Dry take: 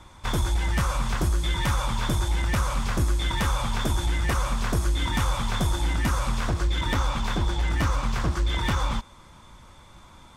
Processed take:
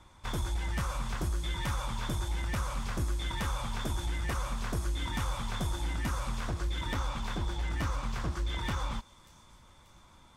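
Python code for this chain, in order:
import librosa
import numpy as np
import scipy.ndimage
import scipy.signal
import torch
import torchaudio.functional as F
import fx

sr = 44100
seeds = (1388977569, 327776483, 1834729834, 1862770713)

y = fx.echo_wet_highpass(x, sr, ms=587, feedback_pct=53, hz=5500.0, wet_db=-13.5)
y = F.gain(torch.from_numpy(y), -8.5).numpy()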